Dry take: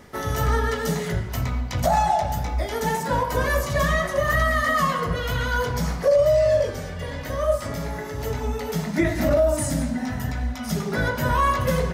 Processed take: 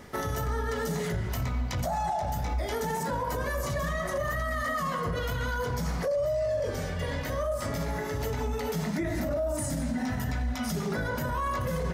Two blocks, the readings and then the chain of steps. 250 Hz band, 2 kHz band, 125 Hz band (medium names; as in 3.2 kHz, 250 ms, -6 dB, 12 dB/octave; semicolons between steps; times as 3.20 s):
-5.5 dB, -8.5 dB, -6.0 dB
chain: dynamic bell 2.9 kHz, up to -4 dB, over -36 dBFS, Q 0.83; peak limiter -22.5 dBFS, peak gain reduction 11.5 dB